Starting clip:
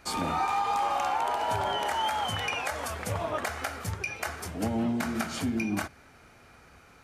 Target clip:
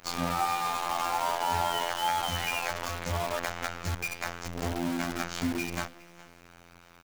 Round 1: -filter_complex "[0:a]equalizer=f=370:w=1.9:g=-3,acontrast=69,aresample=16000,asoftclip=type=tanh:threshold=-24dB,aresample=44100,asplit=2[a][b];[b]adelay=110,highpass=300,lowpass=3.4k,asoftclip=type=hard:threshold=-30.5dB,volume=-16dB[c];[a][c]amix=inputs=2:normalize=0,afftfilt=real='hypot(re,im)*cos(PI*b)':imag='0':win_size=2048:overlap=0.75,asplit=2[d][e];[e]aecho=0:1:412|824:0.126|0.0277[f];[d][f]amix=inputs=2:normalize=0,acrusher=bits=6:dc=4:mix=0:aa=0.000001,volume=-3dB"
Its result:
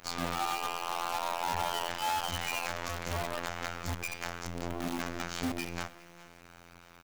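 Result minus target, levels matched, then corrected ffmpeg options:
soft clip: distortion +13 dB
-filter_complex "[0:a]equalizer=f=370:w=1.9:g=-3,acontrast=69,aresample=16000,asoftclip=type=tanh:threshold=-13.5dB,aresample=44100,asplit=2[a][b];[b]adelay=110,highpass=300,lowpass=3.4k,asoftclip=type=hard:threshold=-30.5dB,volume=-16dB[c];[a][c]amix=inputs=2:normalize=0,afftfilt=real='hypot(re,im)*cos(PI*b)':imag='0':win_size=2048:overlap=0.75,asplit=2[d][e];[e]aecho=0:1:412|824:0.126|0.0277[f];[d][f]amix=inputs=2:normalize=0,acrusher=bits=6:dc=4:mix=0:aa=0.000001,volume=-3dB"

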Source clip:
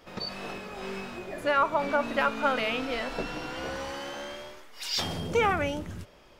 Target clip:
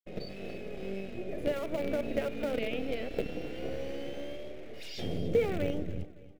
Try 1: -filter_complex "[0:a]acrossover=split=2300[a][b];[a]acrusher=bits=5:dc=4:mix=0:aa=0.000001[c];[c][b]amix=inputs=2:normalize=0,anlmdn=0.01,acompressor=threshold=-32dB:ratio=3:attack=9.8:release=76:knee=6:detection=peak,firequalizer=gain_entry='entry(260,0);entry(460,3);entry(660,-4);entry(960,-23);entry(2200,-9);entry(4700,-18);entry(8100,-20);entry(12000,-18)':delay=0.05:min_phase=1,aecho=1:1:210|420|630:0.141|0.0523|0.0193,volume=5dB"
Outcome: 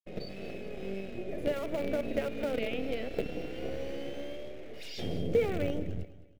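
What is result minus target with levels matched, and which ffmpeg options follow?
echo 71 ms early
-filter_complex "[0:a]acrossover=split=2300[a][b];[a]acrusher=bits=5:dc=4:mix=0:aa=0.000001[c];[c][b]amix=inputs=2:normalize=0,anlmdn=0.01,acompressor=threshold=-32dB:ratio=3:attack=9.8:release=76:knee=6:detection=peak,firequalizer=gain_entry='entry(260,0);entry(460,3);entry(660,-4);entry(960,-23);entry(2200,-9);entry(4700,-18);entry(8100,-20);entry(12000,-18)':delay=0.05:min_phase=1,aecho=1:1:281|562|843:0.141|0.0523|0.0193,volume=5dB"

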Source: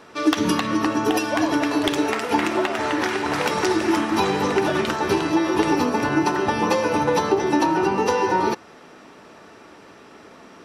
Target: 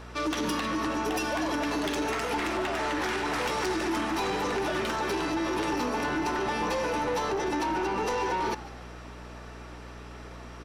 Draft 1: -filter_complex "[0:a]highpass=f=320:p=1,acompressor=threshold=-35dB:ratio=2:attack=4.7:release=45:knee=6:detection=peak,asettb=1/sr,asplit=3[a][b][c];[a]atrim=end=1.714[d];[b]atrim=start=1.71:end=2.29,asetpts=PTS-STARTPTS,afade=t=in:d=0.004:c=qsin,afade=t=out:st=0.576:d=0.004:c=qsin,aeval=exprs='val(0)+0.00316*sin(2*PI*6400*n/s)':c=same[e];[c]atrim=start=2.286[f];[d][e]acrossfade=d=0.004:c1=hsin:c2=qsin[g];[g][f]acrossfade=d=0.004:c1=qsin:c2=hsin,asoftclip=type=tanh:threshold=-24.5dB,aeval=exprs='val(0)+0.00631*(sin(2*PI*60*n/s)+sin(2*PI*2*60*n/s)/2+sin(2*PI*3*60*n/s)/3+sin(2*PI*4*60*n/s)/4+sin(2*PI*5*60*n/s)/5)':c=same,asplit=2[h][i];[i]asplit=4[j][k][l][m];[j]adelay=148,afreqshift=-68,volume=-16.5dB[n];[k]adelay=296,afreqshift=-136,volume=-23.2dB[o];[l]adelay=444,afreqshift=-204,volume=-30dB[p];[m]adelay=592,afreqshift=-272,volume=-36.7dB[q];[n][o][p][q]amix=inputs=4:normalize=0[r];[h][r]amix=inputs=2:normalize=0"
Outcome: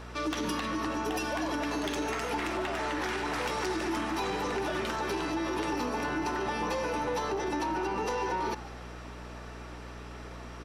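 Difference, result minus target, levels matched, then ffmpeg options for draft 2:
compressor: peak gain reduction +5 dB
-filter_complex "[0:a]highpass=f=320:p=1,acompressor=threshold=-25.5dB:ratio=2:attack=4.7:release=45:knee=6:detection=peak,asettb=1/sr,asplit=3[a][b][c];[a]atrim=end=1.714[d];[b]atrim=start=1.71:end=2.29,asetpts=PTS-STARTPTS,afade=t=in:d=0.004:c=qsin,afade=t=out:st=0.576:d=0.004:c=qsin,aeval=exprs='val(0)+0.00316*sin(2*PI*6400*n/s)':c=same[e];[c]atrim=start=2.286[f];[d][e]acrossfade=d=0.004:c1=hsin:c2=qsin[g];[g][f]acrossfade=d=0.004:c1=qsin:c2=hsin,asoftclip=type=tanh:threshold=-24.5dB,aeval=exprs='val(0)+0.00631*(sin(2*PI*60*n/s)+sin(2*PI*2*60*n/s)/2+sin(2*PI*3*60*n/s)/3+sin(2*PI*4*60*n/s)/4+sin(2*PI*5*60*n/s)/5)':c=same,asplit=2[h][i];[i]asplit=4[j][k][l][m];[j]adelay=148,afreqshift=-68,volume=-16.5dB[n];[k]adelay=296,afreqshift=-136,volume=-23.2dB[o];[l]adelay=444,afreqshift=-204,volume=-30dB[p];[m]adelay=592,afreqshift=-272,volume=-36.7dB[q];[n][o][p][q]amix=inputs=4:normalize=0[r];[h][r]amix=inputs=2:normalize=0"

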